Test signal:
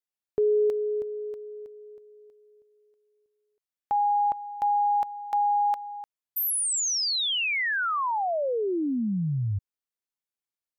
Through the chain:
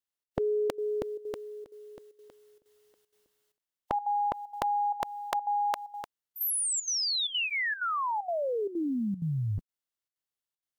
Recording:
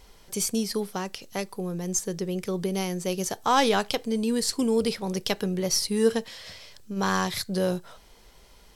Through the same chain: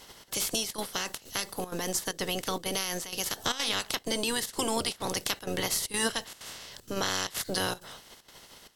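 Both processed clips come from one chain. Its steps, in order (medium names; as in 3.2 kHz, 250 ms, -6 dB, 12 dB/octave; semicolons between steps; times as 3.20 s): spectral peaks clipped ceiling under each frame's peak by 24 dB; peaking EQ 2.9 kHz +2.5 dB; band-stop 2.4 kHz, Q 9.3; compression 2.5:1, threshold -28 dBFS; trance gate "xxx.xxxxx.xx" 192 bpm -12 dB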